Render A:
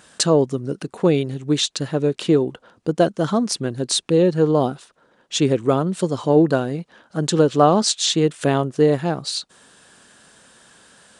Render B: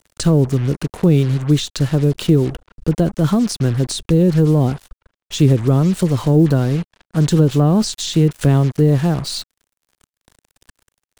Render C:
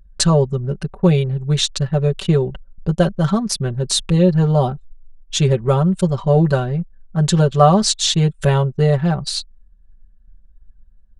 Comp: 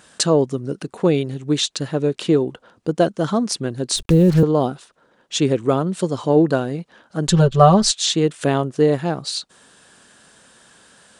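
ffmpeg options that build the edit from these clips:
-filter_complex "[0:a]asplit=3[a][b][c];[a]atrim=end=3.962[d];[1:a]atrim=start=3.958:end=4.432[e];[b]atrim=start=4.428:end=7.282[f];[2:a]atrim=start=7.278:end=7.912[g];[c]atrim=start=7.908[h];[d][e]acrossfade=d=0.004:c1=hsin:c2=hsin[i];[i][f]acrossfade=d=0.004:c1=hsin:c2=hsin[j];[j][g]acrossfade=d=0.004:c1=hsin:c2=hsin[k];[k][h]acrossfade=d=0.004:c1=hsin:c2=hsin"

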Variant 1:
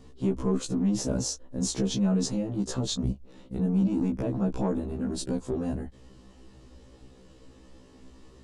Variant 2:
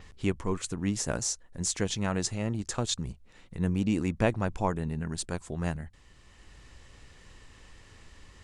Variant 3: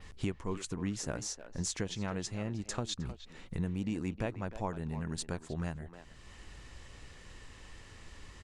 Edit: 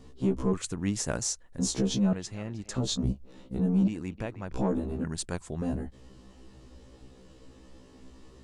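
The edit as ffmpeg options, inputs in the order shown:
-filter_complex "[1:a]asplit=2[a][b];[2:a]asplit=2[c][d];[0:a]asplit=5[e][f][g][h][i];[e]atrim=end=0.532[j];[a]atrim=start=0.528:end=1.592[k];[f]atrim=start=1.588:end=2.132[l];[c]atrim=start=2.128:end=2.762[m];[g]atrim=start=2.758:end=3.882[n];[d]atrim=start=3.878:end=4.522[o];[h]atrim=start=4.518:end=5.042[p];[b]atrim=start=5.038:end=5.622[q];[i]atrim=start=5.618[r];[j][k]acrossfade=d=0.004:c1=hsin:c2=hsin[s];[s][l]acrossfade=d=0.004:c1=hsin:c2=hsin[t];[t][m]acrossfade=d=0.004:c1=hsin:c2=hsin[u];[u][n]acrossfade=d=0.004:c1=hsin:c2=hsin[v];[v][o]acrossfade=d=0.004:c1=hsin:c2=hsin[w];[w][p]acrossfade=d=0.004:c1=hsin:c2=hsin[x];[x][q]acrossfade=d=0.004:c1=hsin:c2=hsin[y];[y][r]acrossfade=d=0.004:c1=hsin:c2=hsin"

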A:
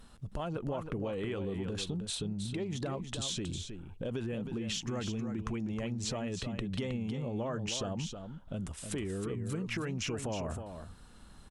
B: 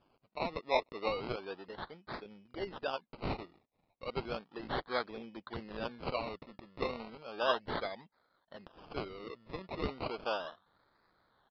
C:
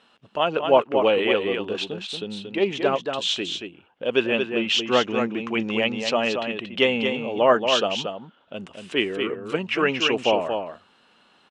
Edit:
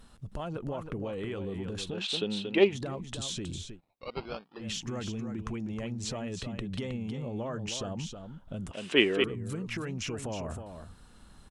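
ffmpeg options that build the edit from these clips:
-filter_complex "[2:a]asplit=2[a][b];[0:a]asplit=4[c][d][e][f];[c]atrim=end=1.99[g];[a]atrim=start=1.89:end=2.75[h];[d]atrim=start=2.65:end=3.81[i];[1:a]atrim=start=3.71:end=4.66[j];[e]atrim=start=4.56:end=8.712[k];[b]atrim=start=8.708:end=9.242[l];[f]atrim=start=9.238[m];[g][h]acrossfade=d=0.1:c1=tri:c2=tri[n];[n][i]acrossfade=d=0.1:c1=tri:c2=tri[o];[o][j]acrossfade=d=0.1:c1=tri:c2=tri[p];[p][k]acrossfade=d=0.1:c1=tri:c2=tri[q];[q][l]acrossfade=d=0.004:c1=hsin:c2=hsin[r];[r][m]acrossfade=d=0.004:c1=hsin:c2=hsin"

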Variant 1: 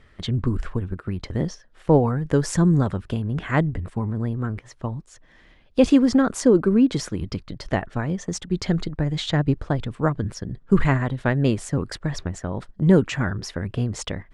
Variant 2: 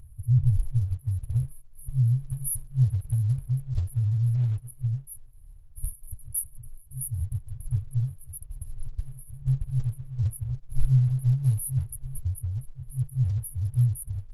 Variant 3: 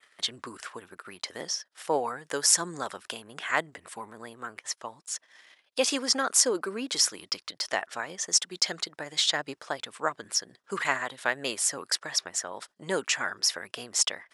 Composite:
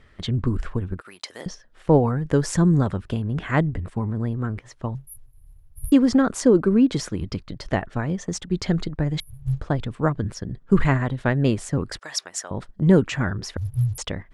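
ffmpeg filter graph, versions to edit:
-filter_complex "[2:a]asplit=2[a][b];[1:a]asplit=3[c][d][e];[0:a]asplit=6[f][g][h][i][j][k];[f]atrim=end=1.012[l];[a]atrim=start=1.008:end=1.462[m];[g]atrim=start=1.458:end=4.952[n];[c]atrim=start=4.948:end=5.922[o];[h]atrim=start=5.918:end=9.202[p];[d]atrim=start=9.198:end=9.602[q];[i]atrim=start=9.598:end=11.992[r];[b]atrim=start=11.988:end=12.512[s];[j]atrim=start=12.508:end=13.572[t];[e]atrim=start=13.568:end=13.982[u];[k]atrim=start=13.978[v];[l][m]acrossfade=d=0.004:c1=hsin:c2=hsin[w];[w][n]acrossfade=d=0.004:c1=hsin:c2=hsin[x];[x][o]acrossfade=d=0.004:c1=hsin:c2=hsin[y];[y][p]acrossfade=d=0.004:c1=hsin:c2=hsin[z];[z][q]acrossfade=d=0.004:c1=hsin:c2=hsin[aa];[aa][r]acrossfade=d=0.004:c1=hsin:c2=hsin[ab];[ab][s]acrossfade=d=0.004:c1=hsin:c2=hsin[ac];[ac][t]acrossfade=d=0.004:c1=hsin:c2=hsin[ad];[ad][u]acrossfade=d=0.004:c1=hsin:c2=hsin[ae];[ae][v]acrossfade=d=0.004:c1=hsin:c2=hsin"

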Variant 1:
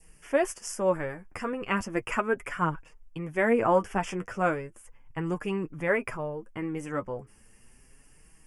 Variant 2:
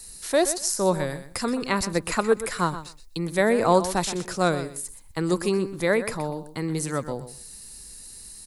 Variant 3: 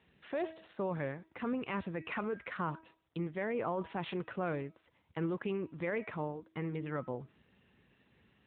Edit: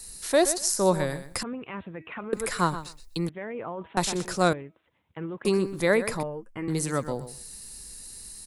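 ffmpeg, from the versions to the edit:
-filter_complex "[2:a]asplit=3[a][b][c];[1:a]asplit=5[d][e][f][g][h];[d]atrim=end=1.432[i];[a]atrim=start=1.428:end=2.332[j];[e]atrim=start=2.328:end=3.292[k];[b]atrim=start=3.288:end=3.972[l];[f]atrim=start=3.968:end=4.532[m];[c]atrim=start=4.528:end=5.452[n];[g]atrim=start=5.448:end=6.232[o];[0:a]atrim=start=6.228:end=6.682[p];[h]atrim=start=6.678[q];[i][j]acrossfade=d=0.004:c1=hsin:c2=hsin[r];[r][k]acrossfade=d=0.004:c1=hsin:c2=hsin[s];[s][l]acrossfade=d=0.004:c1=hsin:c2=hsin[t];[t][m]acrossfade=d=0.004:c1=hsin:c2=hsin[u];[u][n]acrossfade=d=0.004:c1=hsin:c2=hsin[v];[v][o]acrossfade=d=0.004:c1=hsin:c2=hsin[w];[w][p]acrossfade=d=0.004:c1=hsin:c2=hsin[x];[x][q]acrossfade=d=0.004:c1=hsin:c2=hsin"

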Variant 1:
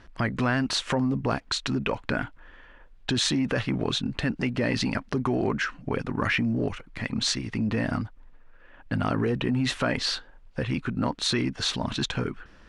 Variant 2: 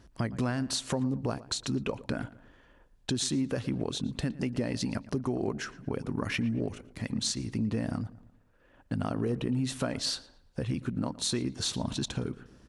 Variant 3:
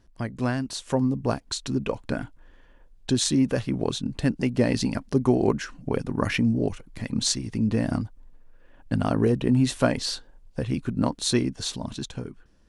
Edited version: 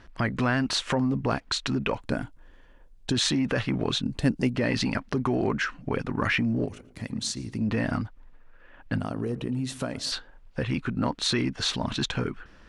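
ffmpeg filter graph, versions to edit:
-filter_complex "[2:a]asplit=2[a][b];[1:a]asplit=2[c][d];[0:a]asplit=5[e][f][g][h][i];[e]atrim=end=2.012[j];[a]atrim=start=2.008:end=3.122[k];[f]atrim=start=3.118:end=4.032[l];[b]atrim=start=4.028:end=4.552[m];[g]atrim=start=4.548:end=6.652[n];[c]atrim=start=6.648:end=7.612[o];[h]atrim=start=7.608:end=8.992[p];[d]atrim=start=8.988:end=10.122[q];[i]atrim=start=10.118[r];[j][k]acrossfade=d=0.004:c1=hsin:c2=hsin[s];[s][l]acrossfade=d=0.004:c1=hsin:c2=hsin[t];[t][m]acrossfade=d=0.004:c1=hsin:c2=hsin[u];[u][n]acrossfade=d=0.004:c1=hsin:c2=hsin[v];[v][o]acrossfade=d=0.004:c1=hsin:c2=hsin[w];[w][p]acrossfade=d=0.004:c1=hsin:c2=hsin[x];[x][q]acrossfade=d=0.004:c1=hsin:c2=hsin[y];[y][r]acrossfade=d=0.004:c1=hsin:c2=hsin"

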